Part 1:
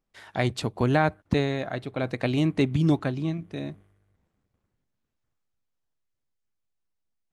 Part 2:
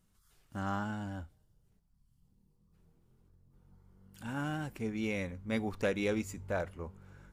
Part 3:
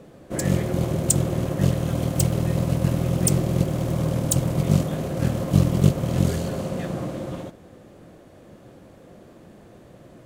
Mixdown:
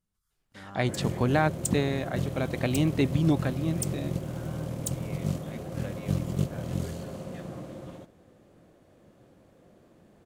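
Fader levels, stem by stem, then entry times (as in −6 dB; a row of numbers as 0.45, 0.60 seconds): −2.0, −11.5, −10.5 decibels; 0.40, 0.00, 0.55 seconds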